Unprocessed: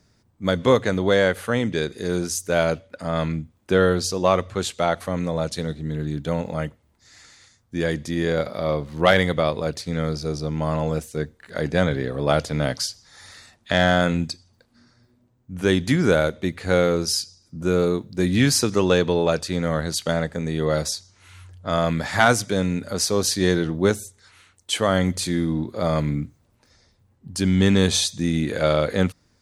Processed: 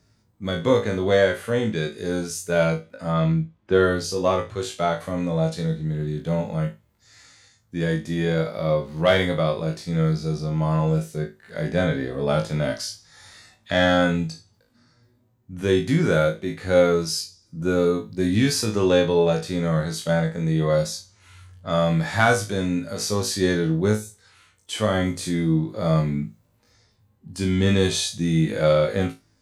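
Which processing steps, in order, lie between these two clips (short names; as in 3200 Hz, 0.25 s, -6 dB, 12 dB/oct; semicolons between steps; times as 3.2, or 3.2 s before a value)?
3.12–3.96 low-pass opened by the level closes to 2900 Hz, open at -13 dBFS; flutter echo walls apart 3.2 m, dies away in 0.22 s; harmonic-percussive split percussive -10 dB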